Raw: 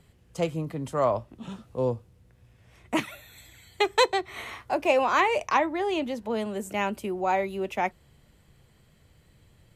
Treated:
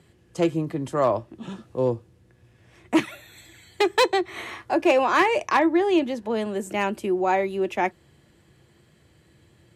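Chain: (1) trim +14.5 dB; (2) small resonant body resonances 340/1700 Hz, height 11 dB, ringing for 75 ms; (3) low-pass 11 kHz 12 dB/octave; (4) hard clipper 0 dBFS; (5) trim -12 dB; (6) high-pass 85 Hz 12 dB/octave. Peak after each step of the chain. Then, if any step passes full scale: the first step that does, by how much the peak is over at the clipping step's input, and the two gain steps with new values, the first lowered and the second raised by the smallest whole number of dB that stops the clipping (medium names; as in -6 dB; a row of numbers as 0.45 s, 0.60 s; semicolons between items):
+5.5 dBFS, +6.0 dBFS, +6.0 dBFS, 0.0 dBFS, -12.0 dBFS, -9.5 dBFS; step 1, 6.0 dB; step 1 +8.5 dB, step 5 -6 dB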